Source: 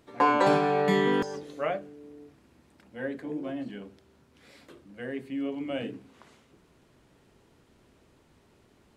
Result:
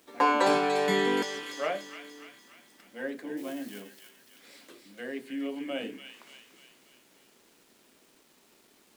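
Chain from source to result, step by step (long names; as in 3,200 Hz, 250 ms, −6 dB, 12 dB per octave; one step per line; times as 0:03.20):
0:03.37–0:03.80: spike at every zero crossing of −41 dBFS
high-pass filter 200 Hz 24 dB per octave
high-shelf EQ 2,900 Hz +8.5 dB
delay with a high-pass on its return 291 ms, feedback 53%, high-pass 2,000 Hz, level −5 dB
bit-depth reduction 10 bits, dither none
level −2 dB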